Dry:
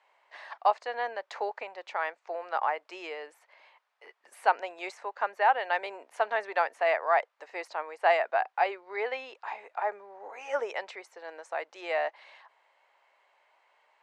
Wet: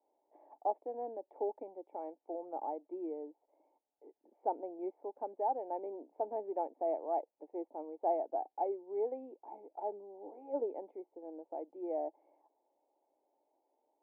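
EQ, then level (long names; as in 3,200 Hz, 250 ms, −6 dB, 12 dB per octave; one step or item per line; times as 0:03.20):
formant resonators in series u
high-frequency loss of the air 240 metres
flat-topped bell 1,400 Hz −12.5 dB
+13.0 dB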